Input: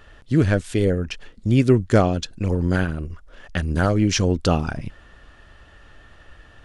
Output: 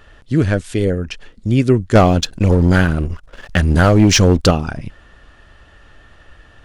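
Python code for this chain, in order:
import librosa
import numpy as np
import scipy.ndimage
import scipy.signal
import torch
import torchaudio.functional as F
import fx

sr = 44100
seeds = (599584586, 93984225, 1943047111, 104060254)

y = fx.leveller(x, sr, passes=2, at=(1.95, 4.51))
y = y * 10.0 ** (2.5 / 20.0)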